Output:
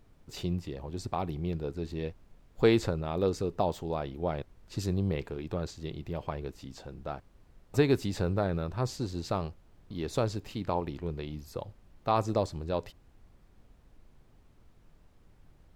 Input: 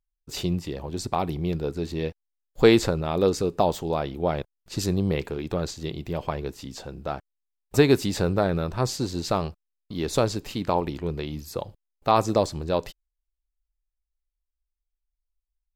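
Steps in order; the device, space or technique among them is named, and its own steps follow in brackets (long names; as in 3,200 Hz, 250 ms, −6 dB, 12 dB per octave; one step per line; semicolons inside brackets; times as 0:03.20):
car interior (parametric band 100 Hz +4.5 dB 0.73 octaves; high-shelf EQ 4,700 Hz −6 dB; brown noise bed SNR 23 dB)
level −7 dB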